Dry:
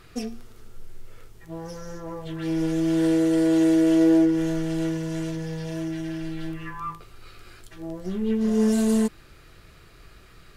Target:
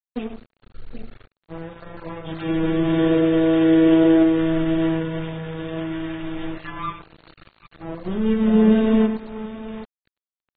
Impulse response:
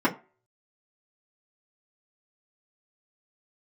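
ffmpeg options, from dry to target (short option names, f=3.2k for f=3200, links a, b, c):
-af "aecho=1:1:97|772:0.299|0.224,aeval=exprs='sgn(val(0))*max(abs(val(0))-0.0119,0)':c=same,volume=5dB" -ar 32000 -c:a aac -b:a 16k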